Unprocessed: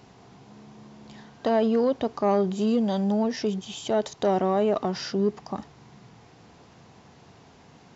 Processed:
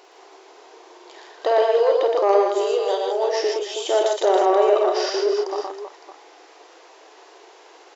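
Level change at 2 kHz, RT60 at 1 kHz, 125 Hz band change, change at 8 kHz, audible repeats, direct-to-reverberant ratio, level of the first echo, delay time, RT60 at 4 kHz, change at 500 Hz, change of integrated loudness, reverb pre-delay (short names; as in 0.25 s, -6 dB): +7.5 dB, none, under -40 dB, n/a, 5, none, -7.0 dB, 50 ms, none, +7.5 dB, +5.5 dB, none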